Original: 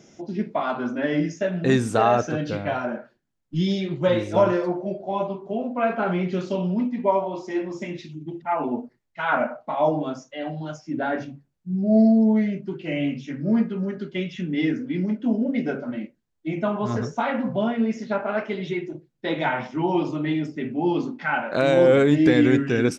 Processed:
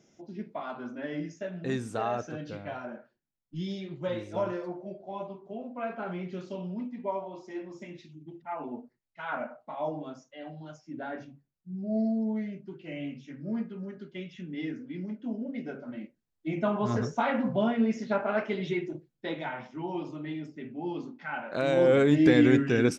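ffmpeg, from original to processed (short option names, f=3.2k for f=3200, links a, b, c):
-af "volume=6dB,afade=t=in:st=15.75:d=1:silence=0.354813,afade=t=out:st=18.95:d=0.49:silence=0.354813,afade=t=in:st=21.29:d=1.01:silence=0.354813"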